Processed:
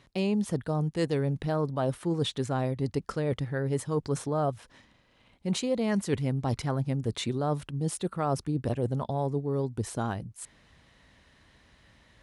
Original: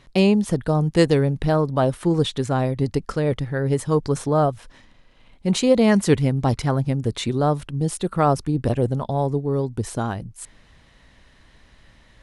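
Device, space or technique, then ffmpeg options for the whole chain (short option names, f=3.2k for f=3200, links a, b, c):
compression on the reversed sound: -af "areverse,acompressor=threshold=-19dB:ratio=6,areverse,highpass=58,volume=-5dB"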